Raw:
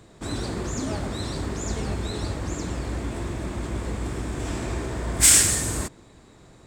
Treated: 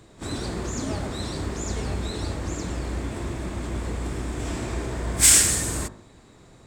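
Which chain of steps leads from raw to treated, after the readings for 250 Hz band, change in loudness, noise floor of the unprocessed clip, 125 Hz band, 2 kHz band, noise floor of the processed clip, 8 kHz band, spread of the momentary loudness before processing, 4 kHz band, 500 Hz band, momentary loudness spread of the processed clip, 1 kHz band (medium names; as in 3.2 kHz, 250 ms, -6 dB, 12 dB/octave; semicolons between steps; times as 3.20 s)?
-0.5 dB, 0.0 dB, -51 dBFS, -0.5 dB, 0.0 dB, -52 dBFS, 0.0 dB, 15 LU, 0.0 dB, -0.5 dB, 16 LU, -0.5 dB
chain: de-hum 52.08 Hz, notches 35; pre-echo 33 ms -14.5 dB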